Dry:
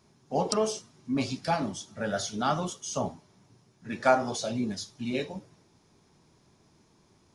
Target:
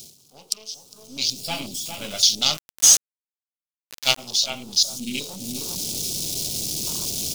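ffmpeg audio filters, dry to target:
-filter_complex "[0:a]aeval=exprs='val(0)+0.5*0.0251*sgn(val(0))':c=same,asettb=1/sr,asplit=3[s0][s1][s2];[s0]atrim=end=1.404[s3];[s1]atrim=start=1.4:end=2,asetpts=PTS-STARTPTS,afade=t=in:d=0.004:c=qsin,afade=t=out:st=0.596:d=0.004:c=qsin,bandreject=f=6100:w=7.2[s4];[s2]atrim=start=1.996[s5];[s3][s4]acrossfade=d=0.004:c1=hsin:c2=qsin[s6];[s6][s5]acrossfade=d=0.004:c1=qsin:c2=hsin,aeval=exprs='0.422*(cos(1*acos(clip(val(0)/0.422,-1,1)))-cos(1*PI/2))+0.106*(cos(3*acos(clip(val(0)/0.422,-1,1)))-cos(3*PI/2))+0.00944*(cos(8*acos(clip(val(0)/0.422,-1,1)))-cos(8*PI/2))':c=same,asettb=1/sr,asplit=3[s7][s8][s9];[s7]atrim=end=4.814[s10];[s8]atrim=start=4.81:end=5.21,asetpts=PTS-STARTPTS,afade=t=in:d=0.004:c=qsin,afade=t=out:st=0.396:d=0.004:c=qsin,equalizer=f=250:t=o:w=1:g=9,equalizer=f=500:t=o:w=1:g=-9,equalizer=f=1000:t=o:w=1:g=-12,equalizer=f=8000:t=o:w=1:g=5[s11];[s9]atrim=start=5.206[s12];[s10][s11]acrossfade=d=0.004:c1=hsin:c2=qsin[s13];[s13][s12]acrossfade=d=0.004:c1=qsin:c2=hsin,asplit=2[s14][s15];[s15]adelay=407,lowpass=f=2400:p=1,volume=0.422,asplit=2[s16][s17];[s17]adelay=407,lowpass=f=2400:p=1,volume=0.16,asplit=2[s18][s19];[s19]adelay=407,lowpass=f=2400:p=1,volume=0.16[s20];[s14][s16][s18][s20]amix=inputs=4:normalize=0,afwtdn=0.00398,aexciter=amount=11.8:drive=9.9:freq=2800,asplit=3[s21][s22][s23];[s21]afade=t=out:st=2.56:d=0.02[s24];[s22]aeval=exprs='val(0)*gte(abs(val(0)),0.0944)':c=same,afade=t=in:st=2.56:d=0.02,afade=t=out:st=4.17:d=0.02[s25];[s23]afade=t=in:st=4.17:d=0.02[s26];[s24][s25][s26]amix=inputs=3:normalize=0,dynaudnorm=f=150:g=9:m=5.01,volume=0.891"

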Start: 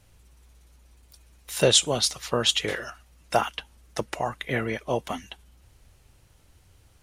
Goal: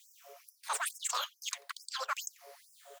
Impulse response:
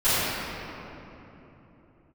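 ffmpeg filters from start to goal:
-filter_complex "[0:a]afftfilt=real='re*pow(10,6/40*sin(2*PI*(0.84*log(max(b,1)*sr/1024/100)/log(2)-(-0.44)*(pts-256)/sr)))':imag='im*pow(10,6/40*sin(2*PI*(0.84*log(max(b,1)*sr/1024/100)/log(2)-(-0.44)*(pts-256)/sr)))':win_size=1024:overlap=0.75,asplit=2[s0][s1];[s1]acrusher=samples=18:mix=1:aa=0.000001:lfo=1:lforange=18:lforate=1.8,volume=0.251[s2];[s0][s2]amix=inputs=2:normalize=0,asoftclip=type=tanh:threshold=0.133,aeval=exprs='val(0)+0.00447*(sin(2*PI*60*n/s)+sin(2*PI*2*60*n/s)/2+sin(2*PI*3*60*n/s)/3+sin(2*PI*4*60*n/s)/4+sin(2*PI*5*60*n/s)/5)':c=same,equalizer=f=96:t=o:w=0.93:g=-6,acrossover=split=3600[s3][s4];[s4]acompressor=threshold=0.00562:ratio=4:attack=1:release=60[s5];[s3][s5]amix=inputs=2:normalize=0,asetrate=103194,aresample=44100,lowshelf=f=130:g=3.5,asplit=2[s6][s7];[s7]adelay=90,highpass=300,lowpass=3400,asoftclip=type=hard:threshold=0.0531,volume=0.1[s8];[s6][s8]amix=inputs=2:normalize=0,areverse,acompressor=threshold=0.0141:ratio=10,areverse,bandreject=f=780:w=14,afftfilt=real='re*gte(b*sr/1024,410*pow(5100/410,0.5+0.5*sin(2*PI*2.3*pts/sr)))':imag='im*gte(b*sr/1024,410*pow(5100/410,0.5+0.5*sin(2*PI*2.3*pts/sr)))':win_size=1024:overlap=0.75,volume=2"

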